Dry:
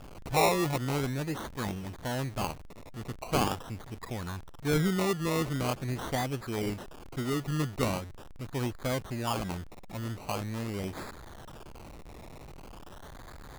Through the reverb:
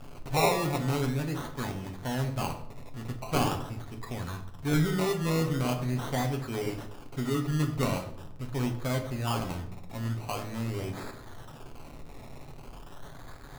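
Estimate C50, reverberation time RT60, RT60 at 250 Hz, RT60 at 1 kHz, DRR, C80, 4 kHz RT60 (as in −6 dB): 10.5 dB, 0.70 s, 0.90 s, 0.65 s, 3.0 dB, 13.0 dB, 0.50 s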